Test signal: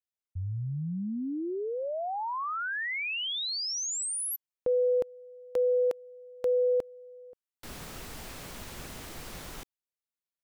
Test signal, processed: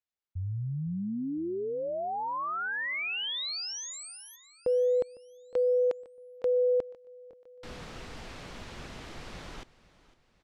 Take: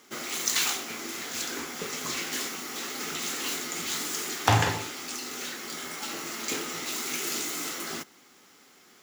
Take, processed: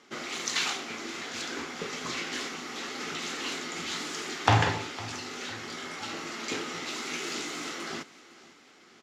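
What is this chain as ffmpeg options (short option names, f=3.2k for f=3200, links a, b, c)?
-af "lowpass=4.8k,aecho=1:1:506|1012|1518|2024:0.106|0.0487|0.0224|0.0103"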